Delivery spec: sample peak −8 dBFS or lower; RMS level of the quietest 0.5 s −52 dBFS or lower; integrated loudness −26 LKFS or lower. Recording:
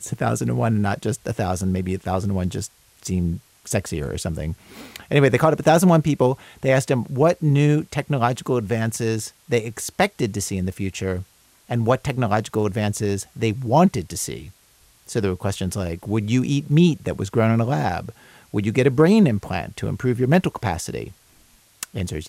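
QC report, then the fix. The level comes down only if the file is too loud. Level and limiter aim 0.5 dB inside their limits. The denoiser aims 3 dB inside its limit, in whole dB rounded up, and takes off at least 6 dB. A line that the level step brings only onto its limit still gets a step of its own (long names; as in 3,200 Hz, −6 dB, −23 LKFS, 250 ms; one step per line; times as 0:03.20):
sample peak −4.5 dBFS: out of spec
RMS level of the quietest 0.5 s −56 dBFS: in spec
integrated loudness −21.5 LKFS: out of spec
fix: level −5 dB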